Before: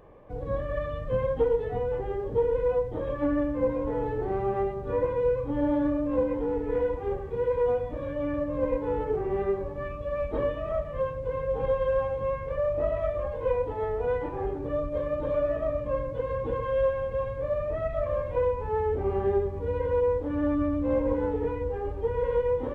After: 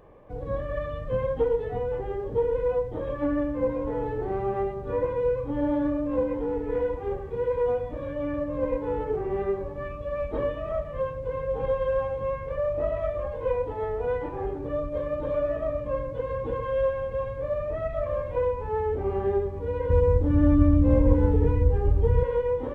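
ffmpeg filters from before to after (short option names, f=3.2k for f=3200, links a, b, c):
-filter_complex "[0:a]asettb=1/sr,asplit=3[a][b][c];[a]atrim=end=19.904[d];[b]atrim=start=19.9:end=22.23,asetpts=PTS-STARTPTS,afade=t=in:d=0.004:c=qsin,afade=t=out:st=2.326:d=0.004:c=qsin,bass=f=250:g=15,treble=f=4k:g=5[e];[c]atrim=start=22.226[f];[d][e]acrossfade=d=0.004:c1=hsin:c2=qsin[g];[g][f]acrossfade=d=0.004:c1=qsin:c2=hsin"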